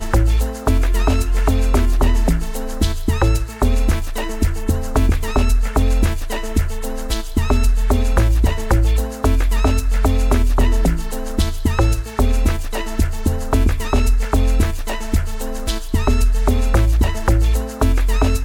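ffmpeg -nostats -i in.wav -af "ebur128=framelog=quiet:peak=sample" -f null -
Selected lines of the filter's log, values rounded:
Integrated loudness:
  I:         -19.3 LUFS
  Threshold: -29.3 LUFS
Loudness range:
  LRA:         2.1 LU
  Threshold: -39.4 LUFS
  LRA low:   -20.3 LUFS
  LRA high:  -18.2 LUFS
Sample peak:
  Peak:       -6.0 dBFS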